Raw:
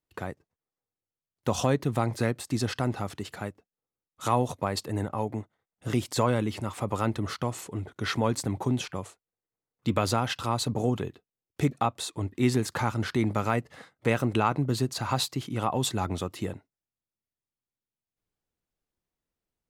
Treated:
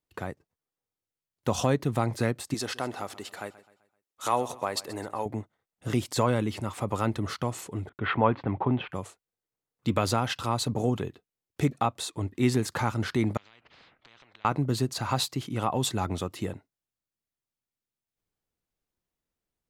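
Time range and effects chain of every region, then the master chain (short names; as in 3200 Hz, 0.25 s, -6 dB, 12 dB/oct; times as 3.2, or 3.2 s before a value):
2.54–5.26 tone controls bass -14 dB, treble +2 dB + feedback echo 0.129 s, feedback 43%, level -18 dB
7.89–8.92 steep low-pass 3100 Hz + expander -50 dBFS + dynamic EQ 960 Hz, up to +7 dB, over -41 dBFS, Q 0.88
13.37–14.45 compressor 3:1, threshold -40 dBFS + ladder low-pass 2400 Hz, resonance 70% + spectral compressor 10:1
whole clip: dry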